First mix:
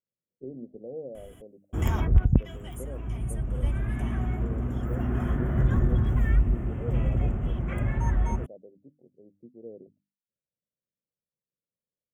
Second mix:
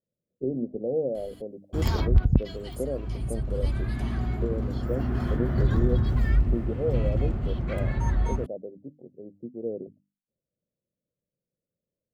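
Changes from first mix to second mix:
speech +11.0 dB; master: remove Butterworth band-stop 4.4 kHz, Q 1.4

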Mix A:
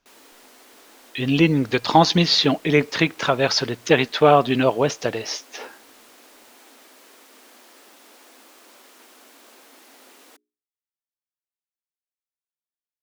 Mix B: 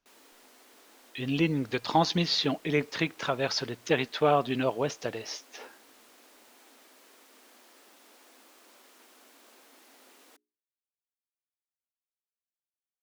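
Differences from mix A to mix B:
speech -9.5 dB; background -7.5 dB

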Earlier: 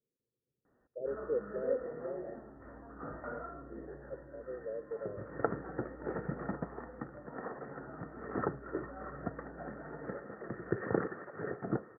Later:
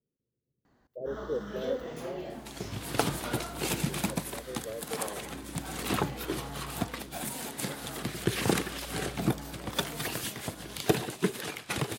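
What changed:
second sound: entry -2.45 s; master: remove rippled Chebyshev low-pass 1.9 kHz, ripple 9 dB

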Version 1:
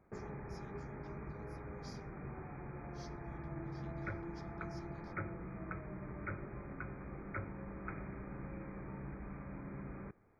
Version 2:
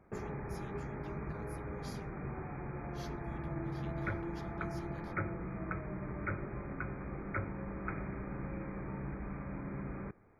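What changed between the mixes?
speech: remove band-pass filter 5.3 kHz, Q 3.5; background +5.0 dB

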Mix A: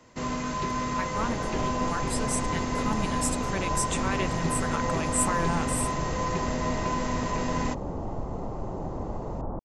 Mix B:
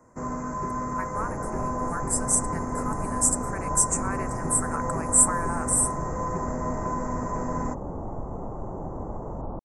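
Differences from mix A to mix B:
speech: add frequency weighting ITU-R 468; master: add Chebyshev band-stop 1.3–8.2 kHz, order 2

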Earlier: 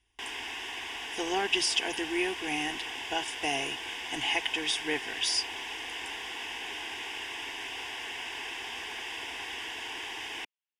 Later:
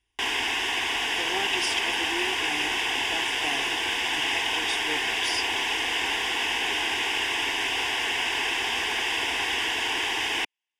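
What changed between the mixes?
speech -3.0 dB; background +11.5 dB

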